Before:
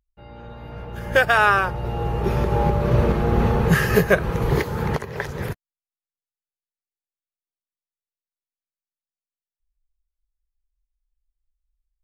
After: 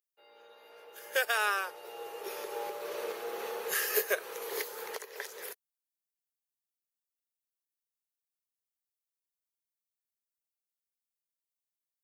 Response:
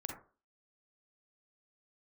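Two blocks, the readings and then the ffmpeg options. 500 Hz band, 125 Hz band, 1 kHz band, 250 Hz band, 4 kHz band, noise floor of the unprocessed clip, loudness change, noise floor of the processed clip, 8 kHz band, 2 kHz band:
-14.0 dB, under -40 dB, -15.0 dB, -29.0 dB, -6.0 dB, under -85 dBFS, -14.0 dB, under -85 dBFS, +0.5 dB, -12.0 dB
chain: -af "highpass=f=440:t=q:w=3.9,aderivative"

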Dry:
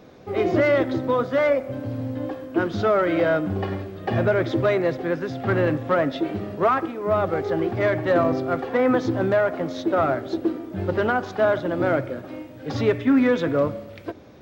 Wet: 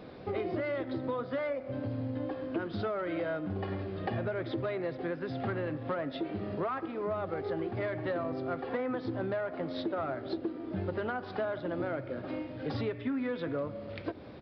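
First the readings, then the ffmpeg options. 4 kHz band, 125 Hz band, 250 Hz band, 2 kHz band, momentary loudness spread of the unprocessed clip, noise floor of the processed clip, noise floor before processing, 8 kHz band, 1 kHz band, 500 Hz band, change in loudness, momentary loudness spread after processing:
-10.0 dB, -10.5 dB, -11.5 dB, -13.0 dB, 10 LU, -44 dBFS, -41 dBFS, n/a, -12.5 dB, -12.5 dB, -12.5 dB, 3 LU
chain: -af "acompressor=threshold=-32dB:ratio=6,aresample=11025,aresample=44100"

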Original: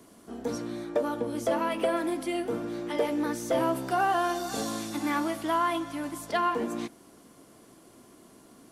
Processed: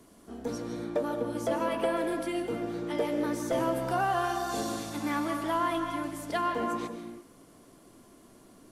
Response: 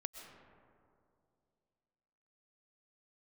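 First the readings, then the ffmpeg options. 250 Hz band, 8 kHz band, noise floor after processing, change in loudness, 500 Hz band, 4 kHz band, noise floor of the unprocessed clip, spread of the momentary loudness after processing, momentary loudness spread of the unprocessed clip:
-1.5 dB, -2.5 dB, -57 dBFS, -1.5 dB, -1.5 dB, -2.5 dB, -55 dBFS, 8 LU, 8 LU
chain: -filter_complex "[0:a]lowshelf=f=64:g=11.5[a];[1:a]atrim=start_sample=2205,afade=t=out:st=0.38:d=0.01,atrim=end_sample=17199,asetrate=38808,aresample=44100[b];[a][b]afir=irnorm=-1:irlink=0"

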